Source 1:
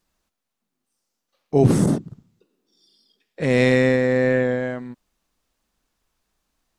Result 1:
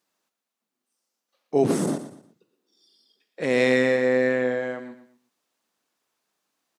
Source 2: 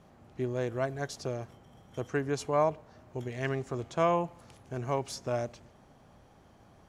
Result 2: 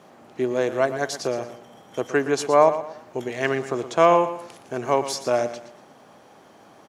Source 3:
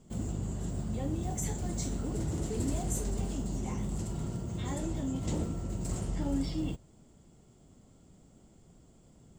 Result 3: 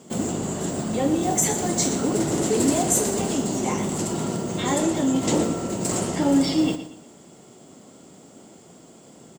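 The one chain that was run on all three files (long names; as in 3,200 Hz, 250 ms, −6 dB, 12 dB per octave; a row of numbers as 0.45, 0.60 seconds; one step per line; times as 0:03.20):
high-pass filter 270 Hz 12 dB per octave
repeating echo 118 ms, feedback 32%, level −12 dB
loudness normalisation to −23 LKFS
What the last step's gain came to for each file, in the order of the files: −2.0, +11.0, +16.5 decibels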